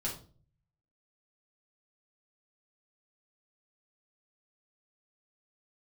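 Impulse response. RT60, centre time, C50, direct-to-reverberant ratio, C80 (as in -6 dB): 0.40 s, 26 ms, 7.5 dB, -5.0 dB, 13.0 dB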